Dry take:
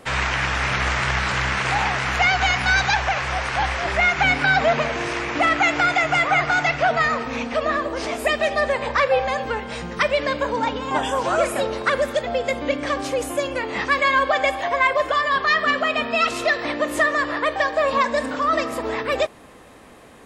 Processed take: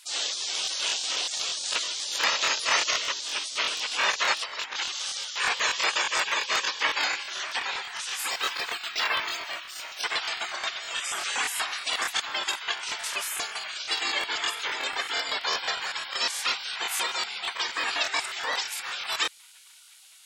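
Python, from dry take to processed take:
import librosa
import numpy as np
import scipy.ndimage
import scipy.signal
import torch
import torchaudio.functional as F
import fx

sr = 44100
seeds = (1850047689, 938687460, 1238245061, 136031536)

y = fx.spec_gate(x, sr, threshold_db=-20, keep='weak')
y = scipy.signal.sosfilt(scipy.signal.butter(2, 690.0, 'highpass', fs=sr, output='sos'), y)
y = fx.over_compress(y, sr, threshold_db=-35.0, ratio=-0.5, at=(4.36, 5.02), fade=0.02)
y = fx.buffer_crackle(y, sr, first_s=0.63, period_s=0.12, block=1024, kind='repeat')
y = fx.resample_linear(y, sr, factor=2, at=(8.3, 10.02))
y = F.gain(torch.from_numpy(y), 6.5).numpy()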